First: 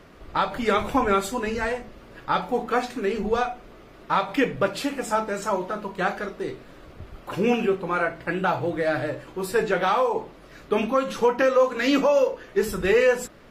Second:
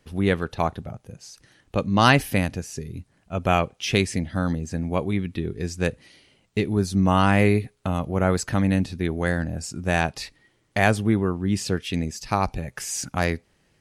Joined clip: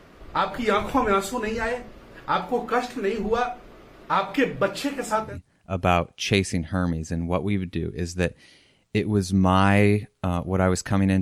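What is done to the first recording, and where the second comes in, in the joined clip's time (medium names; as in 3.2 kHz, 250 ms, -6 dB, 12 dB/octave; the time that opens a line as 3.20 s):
first
5.27 s: go over to second from 2.89 s, crossfade 0.24 s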